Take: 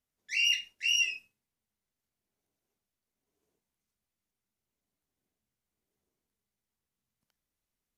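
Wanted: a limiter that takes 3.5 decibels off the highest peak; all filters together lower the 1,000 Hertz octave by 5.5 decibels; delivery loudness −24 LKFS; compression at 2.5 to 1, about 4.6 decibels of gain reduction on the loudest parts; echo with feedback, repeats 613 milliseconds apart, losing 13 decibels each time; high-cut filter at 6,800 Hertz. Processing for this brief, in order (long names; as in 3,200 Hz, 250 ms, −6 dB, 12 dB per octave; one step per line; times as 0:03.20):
low-pass filter 6,800 Hz
parametric band 1,000 Hz −8.5 dB
downward compressor 2.5 to 1, threshold −31 dBFS
brickwall limiter −26 dBFS
repeating echo 613 ms, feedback 22%, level −13 dB
level +11.5 dB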